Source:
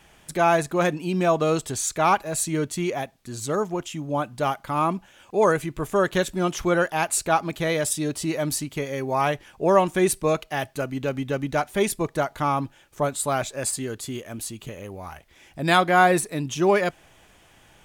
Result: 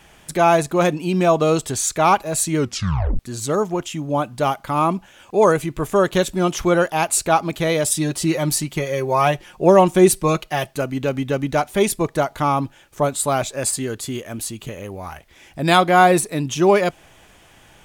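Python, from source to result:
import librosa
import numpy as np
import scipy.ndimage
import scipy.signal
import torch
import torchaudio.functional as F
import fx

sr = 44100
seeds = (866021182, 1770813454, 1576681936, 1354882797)

y = fx.comb(x, sr, ms=5.6, depth=0.53, at=(7.92, 10.71))
y = fx.edit(y, sr, fx.tape_stop(start_s=2.58, length_s=0.61), tone=tone)
y = fx.dynamic_eq(y, sr, hz=1700.0, q=2.5, threshold_db=-38.0, ratio=4.0, max_db=-5)
y = y * 10.0 ** (5.0 / 20.0)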